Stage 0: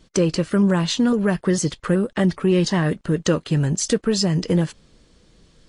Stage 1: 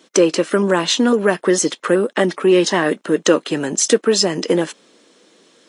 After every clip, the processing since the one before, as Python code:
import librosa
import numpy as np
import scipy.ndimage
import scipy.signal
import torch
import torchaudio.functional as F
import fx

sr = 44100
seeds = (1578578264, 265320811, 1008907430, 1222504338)

y = scipy.signal.sosfilt(scipy.signal.butter(4, 270.0, 'highpass', fs=sr, output='sos'), x)
y = fx.notch(y, sr, hz=4600.0, q=9.8)
y = y * librosa.db_to_amplitude(7.5)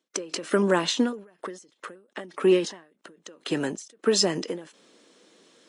y = fx.end_taper(x, sr, db_per_s=130.0)
y = y * librosa.db_to_amplitude(-5.5)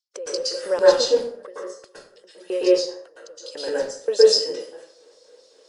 y = fx.filter_lfo_highpass(x, sr, shape='square', hz=3.8, low_hz=510.0, high_hz=4800.0, q=7.7)
y = fx.rev_plate(y, sr, seeds[0], rt60_s=0.57, hf_ratio=0.65, predelay_ms=105, drr_db=-8.5)
y = y * librosa.db_to_amplitude(-10.5)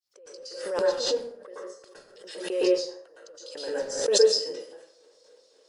y = fx.fade_in_head(x, sr, length_s=1.57)
y = fx.pre_swell(y, sr, db_per_s=59.0)
y = y * librosa.db_to_amplitude(-6.5)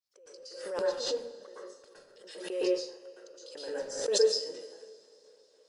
y = fx.rev_plate(x, sr, seeds[1], rt60_s=3.4, hf_ratio=0.8, predelay_ms=0, drr_db=17.5)
y = y * librosa.db_to_amplitude(-6.0)